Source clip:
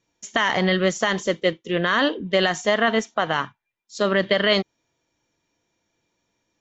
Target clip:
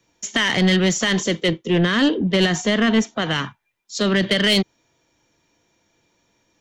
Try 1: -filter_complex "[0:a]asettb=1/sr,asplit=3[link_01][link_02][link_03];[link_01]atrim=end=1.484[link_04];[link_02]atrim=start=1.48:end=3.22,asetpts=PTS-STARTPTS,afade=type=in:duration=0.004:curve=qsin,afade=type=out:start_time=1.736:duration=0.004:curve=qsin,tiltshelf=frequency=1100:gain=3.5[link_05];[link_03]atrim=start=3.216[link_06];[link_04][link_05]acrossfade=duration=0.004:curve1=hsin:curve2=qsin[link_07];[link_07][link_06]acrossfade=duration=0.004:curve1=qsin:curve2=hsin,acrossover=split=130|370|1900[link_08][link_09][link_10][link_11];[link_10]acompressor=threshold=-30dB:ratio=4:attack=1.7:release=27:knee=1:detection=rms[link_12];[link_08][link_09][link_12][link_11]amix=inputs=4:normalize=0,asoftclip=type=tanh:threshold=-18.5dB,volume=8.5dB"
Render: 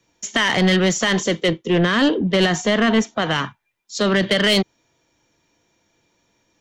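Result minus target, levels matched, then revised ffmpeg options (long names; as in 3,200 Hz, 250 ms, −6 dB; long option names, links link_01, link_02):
downward compressor: peak gain reduction −7 dB
-filter_complex "[0:a]asettb=1/sr,asplit=3[link_01][link_02][link_03];[link_01]atrim=end=1.484[link_04];[link_02]atrim=start=1.48:end=3.22,asetpts=PTS-STARTPTS,afade=type=in:duration=0.004:curve=qsin,afade=type=out:start_time=1.736:duration=0.004:curve=qsin,tiltshelf=frequency=1100:gain=3.5[link_05];[link_03]atrim=start=3.216[link_06];[link_04][link_05]acrossfade=duration=0.004:curve1=hsin:curve2=qsin[link_07];[link_07][link_06]acrossfade=duration=0.004:curve1=qsin:curve2=hsin,acrossover=split=130|370|1900[link_08][link_09][link_10][link_11];[link_10]acompressor=threshold=-39dB:ratio=4:attack=1.7:release=27:knee=1:detection=rms[link_12];[link_08][link_09][link_12][link_11]amix=inputs=4:normalize=0,asoftclip=type=tanh:threshold=-18.5dB,volume=8.5dB"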